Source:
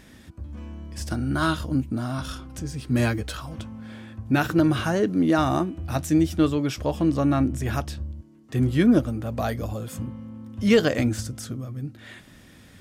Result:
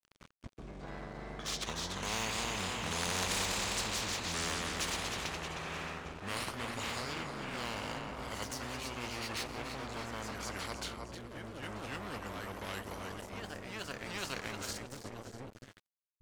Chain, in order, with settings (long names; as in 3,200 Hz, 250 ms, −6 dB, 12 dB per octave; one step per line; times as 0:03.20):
gliding playback speed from 63% → 95%
source passing by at 0:03.18, 9 m/s, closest 2.4 metres
downward expander −59 dBFS
high-shelf EQ 3,800 Hz −4 dB
reversed playback
upward compression, threshold −38 dBFS
reversed playback
wave folding −23 dBFS
on a send: echo with a time of its own for lows and highs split 400 Hz, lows 219 ms, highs 311 ms, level −10.5 dB
on the sum: dead-zone distortion −57.5 dBFS
delay with pitch and tempo change per echo 381 ms, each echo +1 semitone, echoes 3, each echo −6 dB
every bin compressed towards the loudest bin 4 to 1